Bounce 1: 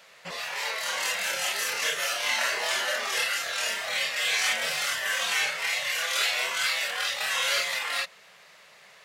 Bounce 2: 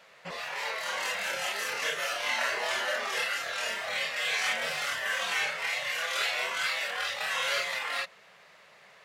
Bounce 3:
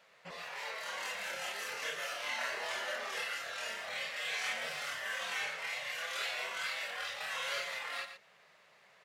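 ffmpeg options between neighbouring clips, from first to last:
ffmpeg -i in.wav -af "highshelf=frequency=3300:gain=-9.5" out.wav
ffmpeg -i in.wav -af "aecho=1:1:118:0.316,volume=-8dB" out.wav

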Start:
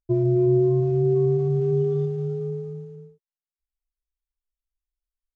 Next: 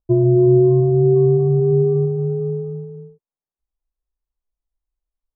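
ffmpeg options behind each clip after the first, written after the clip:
ffmpeg -i in.wav -af "lowpass=frequency=1100:width=0.5412,lowpass=frequency=1100:width=1.3066,volume=6.5dB" out.wav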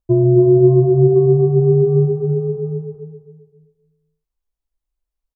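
ffmpeg -i in.wav -filter_complex "[0:a]asplit=2[link_01][link_02];[link_02]adelay=267,lowpass=frequency=830:poles=1,volume=-8dB,asplit=2[link_03][link_04];[link_04]adelay=267,lowpass=frequency=830:poles=1,volume=0.38,asplit=2[link_05][link_06];[link_06]adelay=267,lowpass=frequency=830:poles=1,volume=0.38,asplit=2[link_07][link_08];[link_08]adelay=267,lowpass=frequency=830:poles=1,volume=0.38[link_09];[link_01][link_03][link_05][link_07][link_09]amix=inputs=5:normalize=0,volume=1.5dB" out.wav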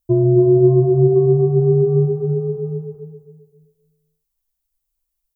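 ffmpeg -i in.wav -af "aemphasis=mode=production:type=75kf,volume=-1.5dB" out.wav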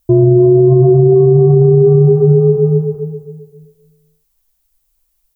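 ffmpeg -i in.wav -af "alimiter=level_in=14dB:limit=-1dB:release=50:level=0:latency=1,volume=-1dB" out.wav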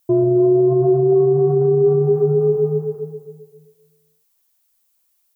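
ffmpeg -i in.wav -af "highpass=frequency=570:poles=1" out.wav

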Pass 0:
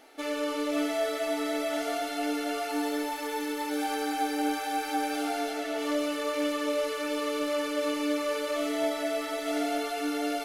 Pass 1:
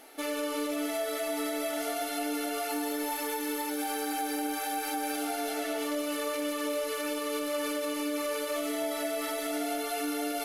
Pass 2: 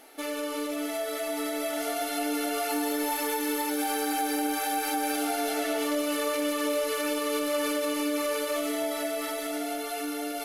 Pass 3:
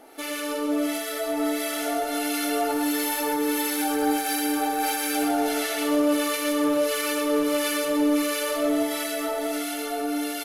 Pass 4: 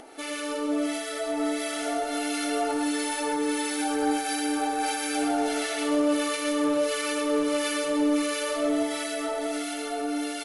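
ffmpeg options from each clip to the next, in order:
ffmpeg -i in.wav -af "equalizer=frequency=12000:width_type=o:width=0.77:gain=11.5,alimiter=level_in=1dB:limit=-24dB:level=0:latency=1:release=130,volume=-1dB,volume=1.5dB" out.wav
ffmpeg -i in.wav -af "dynaudnorm=framelen=350:gausssize=11:maxgain=4dB" out.wav
ffmpeg -i in.wav -filter_complex "[0:a]acrossover=split=1300[link_01][link_02];[link_01]aeval=exprs='val(0)*(1-0.7/2+0.7/2*cos(2*PI*1.5*n/s))':channel_layout=same[link_03];[link_02]aeval=exprs='val(0)*(1-0.7/2-0.7/2*cos(2*PI*1.5*n/s))':channel_layout=same[link_04];[link_03][link_04]amix=inputs=2:normalize=0,aeval=exprs='0.1*(cos(1*acos(clip(val(0)/0.1,-1,1)))-cos(1*PI/2))+0.00891*(cos(5*acos(clip(val(0)/0.1,-1,1)))-cos(5*PI/2))+0.00355*(cos(7*acos(clip(val(0)/0.1,-1,1)))-cos(7*PI/2))':channel_layout=same,aecho=1:1:64.14|122.4:0.355|0.562,volume=4dB" out.wav
ffmpeg -i in.wav -af "acompressor=mode=upward:threshold=-40dB:ratio=2.5,volume=-1.5dB" -ar 24000 -c:a libmp3lame -b:a 80k out.mp3

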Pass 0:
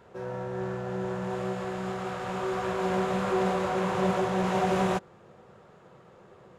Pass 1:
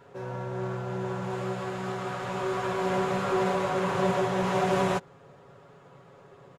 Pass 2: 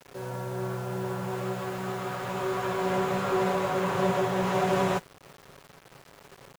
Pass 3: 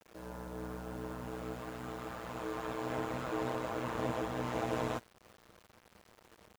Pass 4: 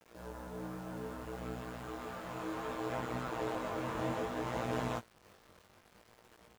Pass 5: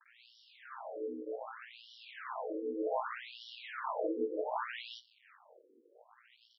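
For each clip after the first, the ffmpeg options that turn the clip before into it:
ffmpeg -i in.wav -af "aecho=1:1:7.2:0.65" out.wav
ffmpeg -i in.wav -af "acrusher=bits=7:mix=0:aa=0.000001" out.wav
ffmpeg -i in.wav -af "aeval=exprs='val(0)*sin(2*PI*59*n/s)':channel_layout=same,volume=-7dB" out.wav
ffmpeg -i in.wav -af "flanger=delay=16.5:depth=5.6:speed=0.63,volume=2.5dB" out.wav
ffmpeg -i in.wav -af "afftfilt=real='re*between(b*sr/1024,350*pow(4100/350,0.5+0.5*sin(2*PI*0.65*pts/sr))/1.41,350*pow(4100/350,0.5+0.5*sin(2*PI*0.65*pts/sr))*1.41)':imag='im*between(b*sr/1024,350*pow(4100/350,0.5+0.5*sin(2*PI*0.65*pts/sr))/1.41,350*pow(4100/350,0.5+0.5*sin(2*PI*0.65*pts/sr))*1.41)':win_size=1024:overlap=0.75,volume=6.5dB" out.wav

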